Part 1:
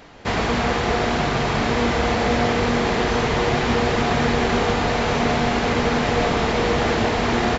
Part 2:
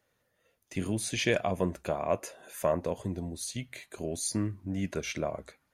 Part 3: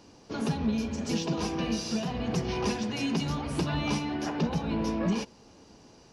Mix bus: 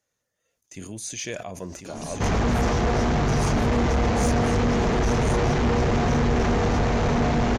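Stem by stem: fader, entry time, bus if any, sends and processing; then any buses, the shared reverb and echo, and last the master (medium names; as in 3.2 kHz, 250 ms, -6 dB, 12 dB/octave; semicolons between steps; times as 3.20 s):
0.0 dB, 1.95 s, no send, no echo send, low-pass 1.4 kHz 6 dB/octave; bass shelf 180 Hz +9.5 dB
-6.5 dB, 0.00 s, no send, echo send -6 dB, none
-8.5 dB, 1.55 s, no send, no echo send, none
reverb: none
echo: delay 1046 ms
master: peaking EQ 6.4 kHz +13 dB 0.75 oct; saturation -17 dBFS, distortion -11 dB; decay stretcher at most 57 dB/s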